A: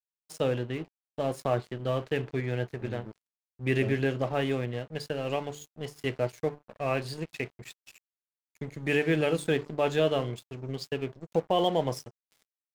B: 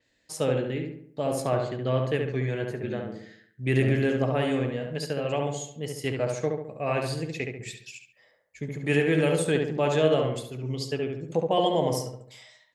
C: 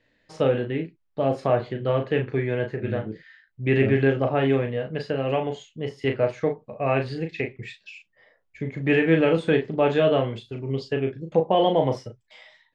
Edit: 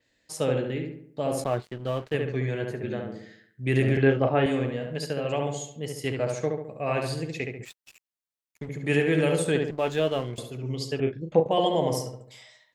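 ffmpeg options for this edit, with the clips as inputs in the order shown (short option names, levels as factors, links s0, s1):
-filter_complex "[0:a]asplit=3[s0][s1][s2];[2:a]asplit=2[s3][s4];[1:a]asplit=6[s5][s6][s7][s8][s9][s10];[s5]atrim=end=1.442[s11];[s0]atrim=start=1.438:end=2.142[s12];[s6]atrim=start=2.138:end=3.972[s13];[s3]atrim=start=3.968:end=4.462[s14];[s7]atrim=start=4.458:end=7.652[s15];[s1]atrim=start=7.648:end=8.692[s16];[s8]atrim=start=8.688:end=9.712[s17];[s2]atrim=start=9.708:end=10.382[s18];[s9]atrim=start=10.378:end=11.002[s19];[s4]atrim=start=10.998:end=11.462[s20];[s10]atrim=start=11.458[s21];[s11][s12]acrossfade=d=0.004:c1=hsin:c2=hsin[s22];[s22][s13]acrossfade=d=0.004:c1=hsin:c2=hsin[s23];[s23][s14]acrossfade=d=0.004:c1=hsin:c2=hsin[s24];[s24][s15]acrossfade=d=0.004:c1=hsin:c2=hsin[s25];[s25][s16]acrossfade=d=0.004:c1=hsin:c2=hsin[s26];[s26][s17]acrossfade=d=0.004:c1=hsin:c2=hsin[s27];[s27][s18]acrossfade=d=0.004:c1=hsin:c2=hsin[s28];[s28][s19]acrossfade=d=0.004:c1=hsin:c2=hsin[s29];[s29][s20]acrossfade=d=0.004:c1=hsin:c2=hsin[s30];[s30][s21]acrossfade=d=0.004:c1=hsin:c2=hsin"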